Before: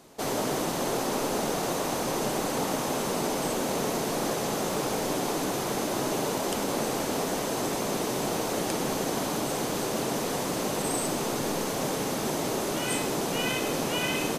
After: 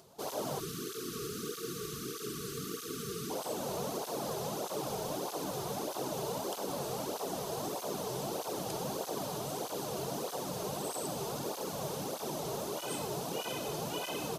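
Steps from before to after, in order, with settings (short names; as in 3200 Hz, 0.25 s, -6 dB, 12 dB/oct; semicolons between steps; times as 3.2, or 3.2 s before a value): de-hum 54.78 Hz, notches 36; spectral delete 0.6–3.3, 480–1100 Hz; graphic EQ 250/2000/8000 Hz -8/-12/-5 dB; upward compressor, threshold -51 dBFS; tape flanging out of phase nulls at 1.6 Hz, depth 4.1 ms; gain -1.5 dB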